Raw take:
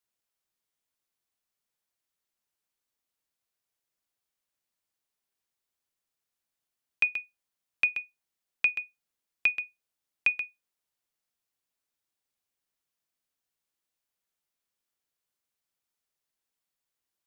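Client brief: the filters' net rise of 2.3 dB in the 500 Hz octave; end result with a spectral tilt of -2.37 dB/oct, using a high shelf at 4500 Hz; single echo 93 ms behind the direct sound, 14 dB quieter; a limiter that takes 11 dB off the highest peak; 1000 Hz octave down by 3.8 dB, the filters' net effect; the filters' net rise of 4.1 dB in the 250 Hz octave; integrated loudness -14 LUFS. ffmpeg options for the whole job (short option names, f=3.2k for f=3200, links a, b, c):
-af "equalizer=f=250:t=o:g=4.5,equalizer=f=500:t=o:g=3.5,equalizer=f=1k:t=o:g=-6.5,highshelf=f=4.5k:g=3,alimiter=limit=-24dB:level=0:latency=1,aecho=1:1:93:0.2,volume=21dB"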